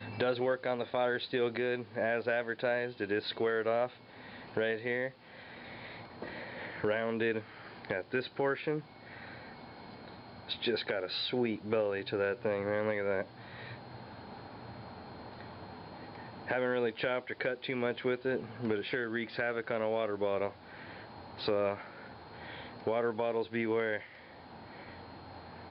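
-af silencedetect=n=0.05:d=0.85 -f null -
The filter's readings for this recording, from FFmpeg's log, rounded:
silence_start: 5.07
silence_end: 6.84 | silence_duration: 1.77
silence_start: 8.75
silence_end: 10.52 | silence_duration: 1.77
silence_start: 13.21
silence_end: 16.51 | silence_duration: 3.30
silence_start: 20.48
silence_end: 21.46 | silence_duration: 0.99
silence_start: 21.73
silence_end: 22.87 | silence_duration: 1.14
silence_start: 23.96
silence_end: 25.70 | silence_duration: 1.74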